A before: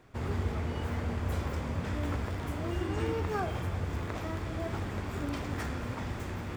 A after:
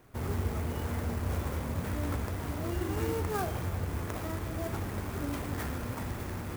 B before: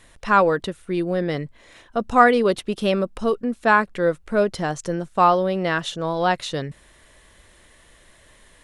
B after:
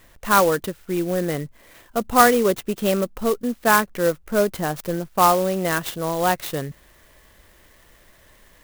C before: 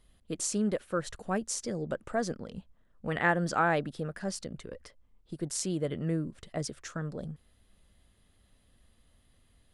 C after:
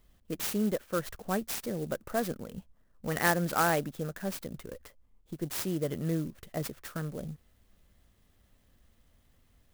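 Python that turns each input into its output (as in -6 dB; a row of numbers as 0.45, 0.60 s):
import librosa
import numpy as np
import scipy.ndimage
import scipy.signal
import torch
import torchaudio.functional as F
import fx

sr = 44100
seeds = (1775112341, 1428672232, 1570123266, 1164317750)

y = fx.clock_jitter(x, sr, seeds[0], jitter_ms=0.05)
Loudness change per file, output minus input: 0.0, 0.0, 0.0 LU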